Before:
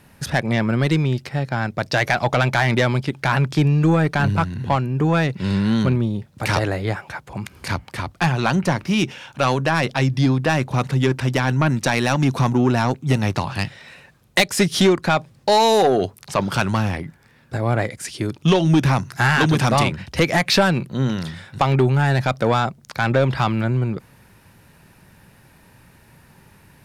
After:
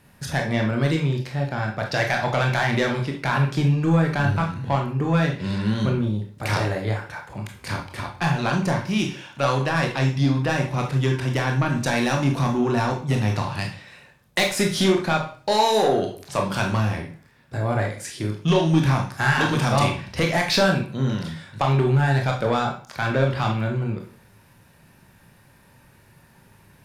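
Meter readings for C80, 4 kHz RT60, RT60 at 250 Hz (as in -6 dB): 13.0 dB, 0.40 s, 0.50 s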